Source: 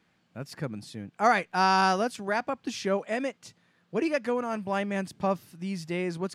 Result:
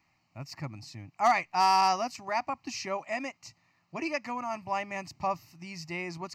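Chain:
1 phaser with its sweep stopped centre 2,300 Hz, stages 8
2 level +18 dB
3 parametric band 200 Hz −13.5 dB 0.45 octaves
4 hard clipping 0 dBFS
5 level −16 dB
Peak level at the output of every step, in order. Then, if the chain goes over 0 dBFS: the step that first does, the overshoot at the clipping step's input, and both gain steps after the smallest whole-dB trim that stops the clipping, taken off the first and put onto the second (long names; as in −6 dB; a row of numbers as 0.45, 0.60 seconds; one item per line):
−14.0, +4.0, +3.5, 0.0, −16.0 dBFS
step 2, 3.5 dB
step 2 +14 dB, step 5 −12 dB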